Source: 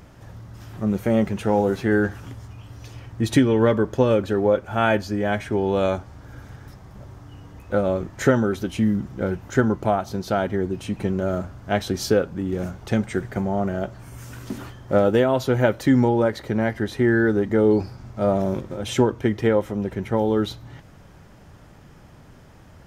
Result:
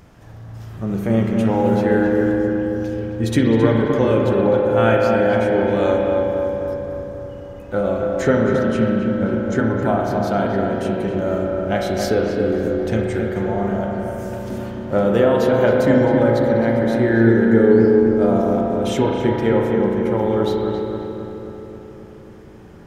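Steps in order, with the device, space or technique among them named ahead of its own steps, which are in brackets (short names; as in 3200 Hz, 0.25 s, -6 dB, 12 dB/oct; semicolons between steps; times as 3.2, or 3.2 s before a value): dub delay into a spring reverb (darkening echo 0.267 s, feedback 69%, low-pass 1700 Hz, level -3.5 dB; spring tank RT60 2.4 s, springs 35 ms, chirp 30 ms, DRR 0.5 dB); 8.21–9.67 LPF 8500 Hz 12 dB/oct; gain -1 dB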